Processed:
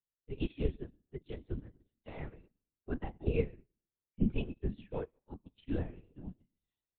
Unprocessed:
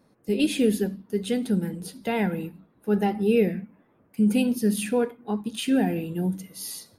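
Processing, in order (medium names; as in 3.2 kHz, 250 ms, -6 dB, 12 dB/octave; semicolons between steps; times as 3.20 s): on a send at -15.5 dB: reverberation RT60 0.65 s, pre-delay 114 ms; on the sum: LPC vocoder at 8 kHz whisper; upward expansion 2.5:1, over -40 dBFS; trim -7.5 dB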